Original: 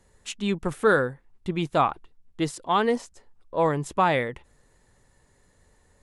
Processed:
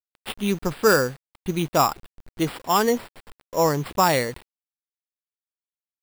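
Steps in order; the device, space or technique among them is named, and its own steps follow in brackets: early 8-bit sampler (sample-rate reducer 6.3 kHz, jitter 0%; bit crusher 8-bit); trim +2.5 dB

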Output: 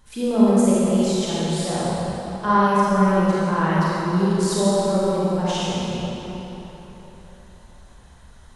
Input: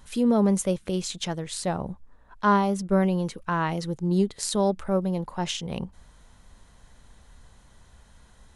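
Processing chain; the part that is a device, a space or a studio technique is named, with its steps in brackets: tunnel (flutter echo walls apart 7.3 m, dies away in 0.24 s; reverberation RT60 3.8 s, pre-delay 28 ms, DRR -9 dB); trim -4 dB

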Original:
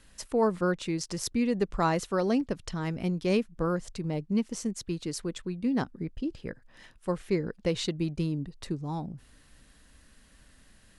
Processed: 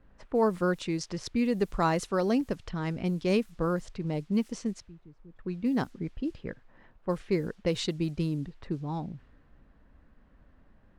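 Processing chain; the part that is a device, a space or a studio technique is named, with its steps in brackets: 4.80–5.39 s: amplifier tone stack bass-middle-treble 10-0-1; cassette deck with a dynamic noise filter (white noise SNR 32 dB; level-controlled noise filter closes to 970 Hz, open at -24.5 dBFS)

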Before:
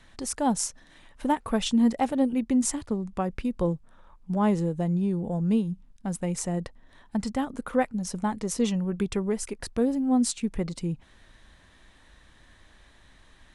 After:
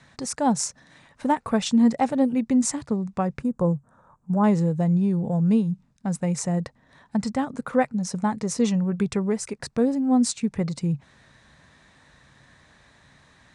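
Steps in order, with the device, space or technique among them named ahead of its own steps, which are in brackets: car door speaker (cabinet simulation 93–8800 Hz, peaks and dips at 140 Hz +9 dB, 340 Hz -5 dB, 3.1 kHz -7 dB); 3.39–4.44 s: high-order bell 3.2 kHz -14 dB; trim +3.5 dB

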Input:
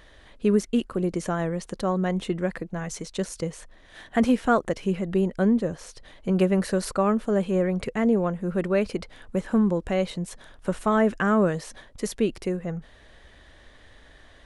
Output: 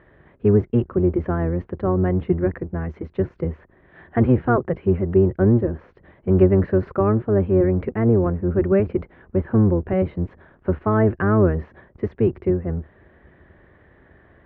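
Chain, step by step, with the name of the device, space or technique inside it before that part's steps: sub-octave bass pedal (octave divider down 1 oct, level +2 dB; cabinet simulation 62–2000 Hz, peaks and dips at 77 Hz +5 dB, 170 Hz +3 dB, 370 Hz +9 dB)

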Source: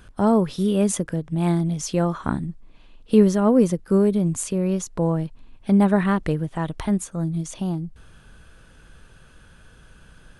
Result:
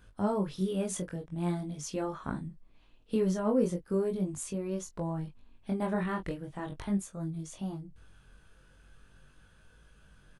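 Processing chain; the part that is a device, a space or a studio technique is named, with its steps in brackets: double-tracked vocal (doubling 21 ms -9 dB; chorus 0.41 Hz, delay 19 ms, depth 4.2 ms); trim -8 dB

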